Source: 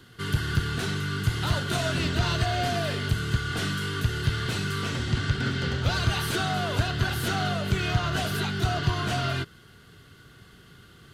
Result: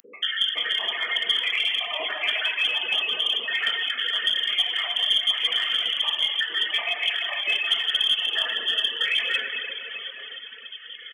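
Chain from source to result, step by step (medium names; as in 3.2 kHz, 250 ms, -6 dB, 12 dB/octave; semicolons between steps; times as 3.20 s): random holes in the spectrogram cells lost 81%; compression 6:1, threshold -36 dBFS, peak gain reduction 16.5 dB; on a send: early reflections 26 ms -16 dB, 58 ms -17.5 dB; on the sum: plate-style reverb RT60 4 s, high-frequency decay 1×, DRR -6 dB; frequency inversion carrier 3.3 kHz; dynamic bell 640 Hz, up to +4 dB, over -54 dBFS, Q 0.76; steep high-pass 230 Hz 36 dB/octave; tilt EQ +4.5 dB/octave; in parallel at -7 dB: one-sided clip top -22.5 dBFS, bottom -19.5 dBFS; on the sum: reverb removal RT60 1.1 s; upward compressor, threshold -36 dBFS; trim +2 dB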